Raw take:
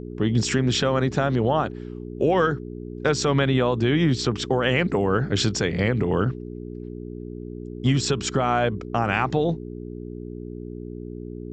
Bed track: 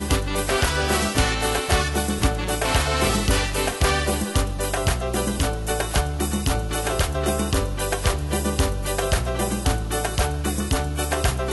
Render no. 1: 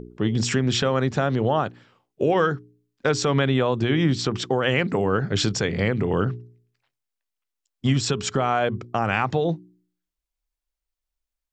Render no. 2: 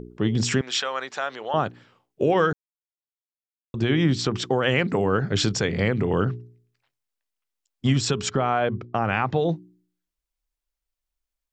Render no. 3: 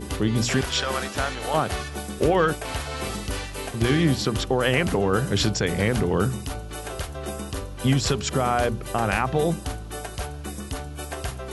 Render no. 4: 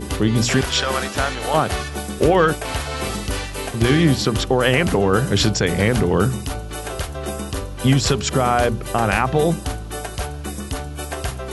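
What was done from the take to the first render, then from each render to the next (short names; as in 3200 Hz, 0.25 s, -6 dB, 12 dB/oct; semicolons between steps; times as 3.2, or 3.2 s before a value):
de-hum 60 Hz, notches 7
0.61–1.54 HPF 840 Hz; 2.53–3.74 mute; 8.3–9.36 air absorption 160 m
add bed track -9.5 dB
gain +5 dB; limiter -3 dBFS, peak gain reduction 1.5 dB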